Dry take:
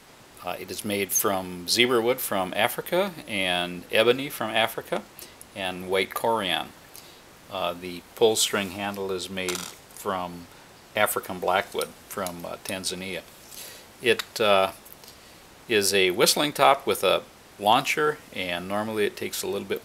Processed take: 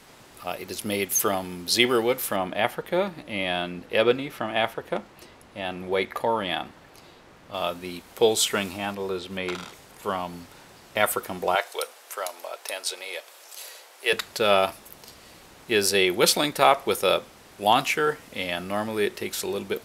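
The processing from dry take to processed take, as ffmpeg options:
ffmpeg -i in.wav -filter_complex "[0:a]asettb=1/sr,asplit=3[link_01][link_02][link_03];[link_01]atrim=end=2.364[link_04];[link_02]atrim=start=2.36:end=7.54,asetpts=PTS-STARTPTS,afade=type=in:duration=0.004:curve=qsin,afade=type=out:start_time=5.176:duration=0.004:curve=qsin,lowpass=frequency=2500:poles=1[link_05];[link_03]atrim=start=7.536[link_06];[link_04][link_05]acrossfade=duration=0.004:curve1=hsin:curve2=qsin[link_07];[link_07][link_06]acrossfade=duration=0.004:curve1=qsin:curve2=hsin,asettb=1/sr,asplit=3[link_08][link_09][link_10];[link_08]atrim=end=8.924[link_11];[link_09]atrim=start=8.92:end=10.03,asetpts=PTS-STARTPTS,afade=type=in:duration=0.004:curve=qsin,afade=type=out:start_time=1.106:duration=0.004:curve=qsin,acrossover=split=3700[link_12][link_13];[link_13]acompressor=threshold=-48dB:ratio=4:attack=1:release=60[link_14];[link_12][link_14]amix=inputs=2:normalize=0[link_15];[link_10]atrim=start=10.026[link_16];[link_11][link_15]acrossfade=duration=0.004:curve1=hsin:curve2=qsin[link_17];[link_17][link_16]acrossfade=duration=0.004:curve1=qsin:curve2=hsin,asettb=1/sr,asplit=3[link_18][link_19][link_20];[link_18]atrim=end=11.554[link_21];[link_19]atrim=start=11.55:end=14.13,asetpts=PTS-STARTPTS,afade=type=in:duration=0.004:curve=qsin,afade=type=out:start_time=2.576:duration=0.004:curve=qsin,highpass=frequency=470:width=0.5412,highpass=frequency=470:width=1.3066[link_22];[link_20]atrim=start=14.126[link_23];[link_21][link_22]acrossfade=duration=0.004:curve1=hsin:curve2=qsin[link_24];[link_24][link_23]acrossfade=duration=0.004:curve1=qsin:curve2=hsin" out.wav

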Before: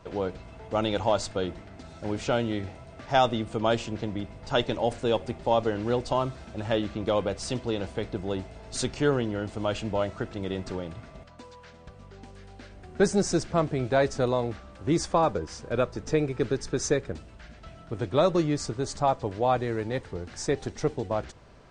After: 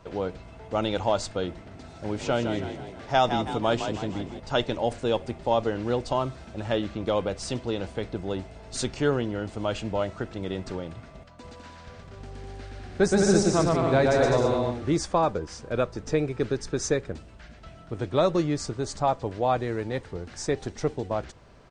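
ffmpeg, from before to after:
ffmpeg -i in.wav -filter_complex "[0:a]asettb=1/sr,asplit=3[link_01][link_02][link_03];[link_01]atrim=end=1.504[link_04];[link_02]atrim=start=1.5:end=4.4,asetpts=PTS-STARTPTS,afade=type=in:duration=0.004:curve=qsin,afade=type=out:start_time=2.896:duration=0.004:curve=qsin,asplit=7[link_05][link_06][link_07][link_08][link_09][link_10][link_11];[link_06]adelay=162,afreqshift=45,volume=-8dB[link_12];[link_07]adelay=324,afreqshift=90,volume=-14.4dB[link_13];[link_08]adelay=486,afreqshift=135,volume=-20.8dB[link_14];[link_09]adelay=648,afreqshift=180,volume=-27.1dB[link_15];[link_10]adelay=810,afreqshift=225,volume=-33.5dB[link_16];[link_11]adelay=972,afreqshift=270,volume=-39.9dB[link_17];[link_05][link_12][link_13][link_14][link_15][link_16][link_17]amix=inputs=7:normalize=0,atrim=end_sample=127890[link_18];[link_03]atrim=start=4.396[link_19];[link_04][link_18]acrossfade=duration=0.004:curve1=hsin:curve2=qsin[link_20];[link_20][link_19]acrossfade=duration=0.004:curve1=qsin:curve2=hsin,asplit=3[link_21][link_22][link_23];[link_21]afade=type=out:start_time=11.43:duration=0.02[link_24];[link_22]aecho=1:1:120|204|262.8|304|332.8:0.794|0.631|0.501|0.398|0.316,afade=type=in:start_time=11.43:duration=0.02,afade=type=out:start_time=14.95:duration=0.02[link_25];[link_23]afade=type=in:start_time=14.95:duration=0.02[link_26];[link_24][link_25][link_26]amix=inputs=3:normalize=0" out.wav

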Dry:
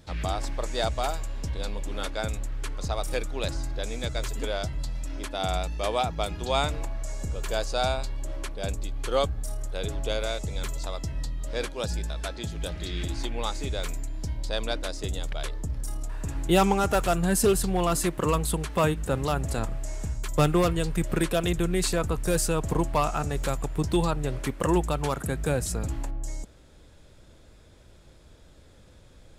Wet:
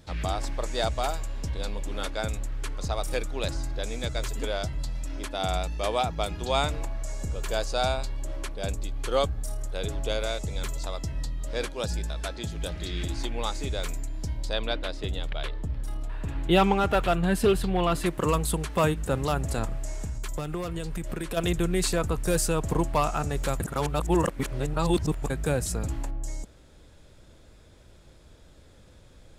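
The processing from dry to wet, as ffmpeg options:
ffmpeg -i in.wav -filter_complex "[0:a]asettb=1/sr,asplit=3[link_01][link_02][link_03];[link_01]atrim=end=14.534[link_04];[link_02]atrim=start=14.53:end=18.06,asetpts=PTS-STARTPTS,afade=type=in:duration=0.004:curve=qsin,afade=type=out:start_time=3.526:duration=0.004:curve=qsin,highshelf=frequency=4700:width_type=q:width=1.5:gain=-9.5[link_05];[link_03]atrim=start=18.056[link_06];[link_04][link_05]acrossfade=duration=0.004:curve1=hsin:curve2=qsin[link_07];[link_07][link_06]acrossfade=duration=0.004:curve1=qsin:curve2=hsin,asplit=3[link_08][link_09][link_10];[link_08]afade=type=out:start_time=19.92:duration=0.02[link_11];[link_09]acompressor=threshold=-28dB:ratio=6:attack=3.2:release=140:knee=1:detection=peak,afade=type=in:start_time=19.92:duration=0.02,afade=type=out:start_time=21.36:duration=0.02[link_12];[link_10]afade=type=in:start_time=21.36:duration=0.02[link_13];[link_11][link_12][link_13]amix=inputs=3:normalize=0,asplit=3[link_14][link_15][link_16];[link_14]atrim=end=23.602[link_17];[link_15]atrim=start=23.598:end=25.302,asetpts=PTS-STARTPTS,areverse[link_18];[link_16]atrim=start=25.298[link_19];[link_17][link_18]acrossfade=duration=0.004:curve1=hsin:curve2=hsin[link_20];[link_20][link_19]acrossfade=duration=0.004:curve1=hsin:curve2=hsin" out.wav

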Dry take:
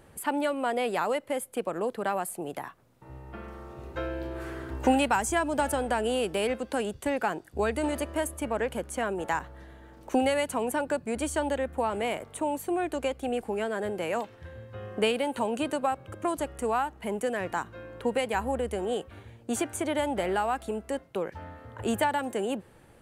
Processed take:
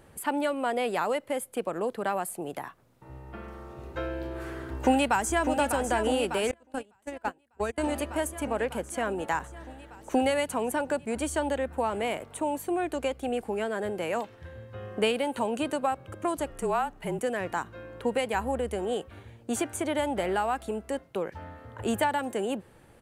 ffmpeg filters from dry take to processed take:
ffmpeg -i in.wav -filter_complex "[0:a]asplit=2[link_01][link_02];[link_02]afade=type=in:start_time=4.61:duration=0.01,afade=type=out:start_time=5.52:duration=0.01,aecho=0:1:600|1200|1800|2400|3000|3600|4200|4800|5400|6000|6600|7200:0.421697|0.316272|0.237204|0.177903|0.133427|0.100071|0.0750529|0.0562897|0.0422173|0.0316629|0.0237472|0.0178104[link_03];[link_01][link_03]amix=inputs=2:normalize=0,asettb=1/sr,asplit=3[link_04][link_05][link_06];[link_04]atrim=end=6.514[link_07];[link_05]atrim=start=6.51:end=7.78,asetpts=PTS-STARTPTS,afade=type=in:duration=0.004:curve=qsin,afade=type=out:start_time=1.266:duration=0.004:curve=qsin,agate=range=-29dB:threshold=-26dB:ratio=16:release=100:detection=peak[link_08];[link_06]atrim=start=7.776[link_09];[link_07][link_08]acrossfade=duration=0.004:curve1=hsin:curve2=qsin[link_10];[link_10][link_09]acrossfade=duration=0.004:curve1=qsin:curve2=hsin,asettb=1/sr,asplit=3[link_11][link_12][link_13];[link_11]atrim=end=16.504[link_14];[link_12]atrim=start=16.5:end=17.19,asetpts=PTS-STARTPTS,afade=type=in:duration=0.004:curve=qsin,afade=type=out:start_time=0.686:duration=0.004:curve=qsin,afreqshift=-36[link_15];[link_13]atrim=start=17.186[link_16];[link_14][link_15]acrossfade=duration=0.004:curve1=hsin:curve2=qsin[link_17];[link_17][link_16]acrossfade=duration=0.004:curve1=qsin:curve2=hsin" out.wav

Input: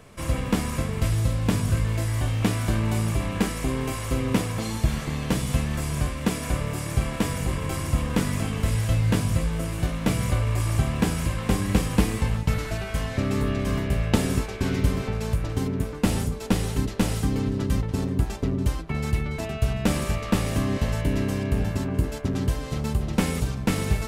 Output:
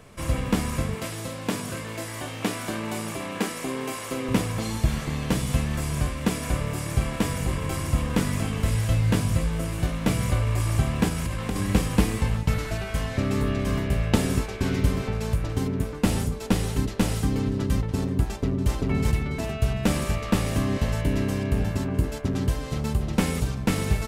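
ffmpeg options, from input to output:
ffmpeg -i in.wav -filter_complex "[0:a]asettb=1/sr,asplit=3[link_01][link_02][link_03];[link_01]atrim=end=0.954[link_04];[link_02]atrim=start=0.95:end=4.29,asetpts=PTS-STARTPTS,afade=type=in:duration=0.004:curve=qsin,afade=type=out:start_time=3.336:duration=0.004:curve=qsin,highpass=250[link_05];[link_03]atrim=start=4.286[link_06];[link_04][link_05]acrossfade=duration=0.004:curve1=hsin:curve2=qsin[link_07];[link_07][link_06]acrossfade=duration=0.004:curve1=qsin:curve2=hsin,asettb=1/sr,asplit=3[link_08][link_09][link_10];[link_08]atrim=end=11.084[link_11];[link_09]atrim=start=11.08:end=11.56,asetpts=PTS-STARTPTS,afade=type=in:duration=0.004:curve=qsin,afade=type=out:start_time=0.476:duration=0.004:curve=qsin,acompressor=threshold=-23dB:ratio=6:attack=3.2:release=140:knee=1:detection=peak[link_12];[link_10]atrim=start=11.556[link_13];[link_11][link_12]acrossfade=duration=0.004:curve1=hsin:curve2=qsin[link_14];[link_14][link_13]acrossfade=duration=0.004:curve1=qsin:curve2=hsin,asplit=2[link_15][link_16];[link_16]afade=type=in:start_time=18.29:duration=0.01,afade=type=out:start_time=18.72:duration=0.01,aecho=0:1:390|780|1170|1560|1950:0.891251|0.311938|0.109178|0.0382124|0.0133743[link_17];[link_15][link_17]amix=inputs=2:normalize=0" out.wav

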